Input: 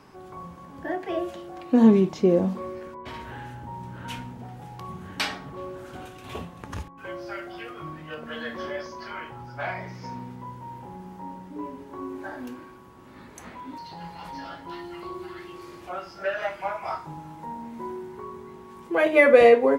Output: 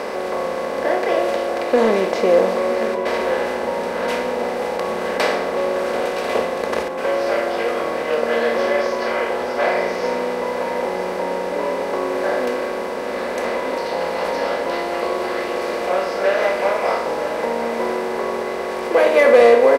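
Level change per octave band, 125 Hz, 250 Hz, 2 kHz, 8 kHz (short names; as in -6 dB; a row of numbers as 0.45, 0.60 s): -4.0, 0.0, +7.5, +12.0 dB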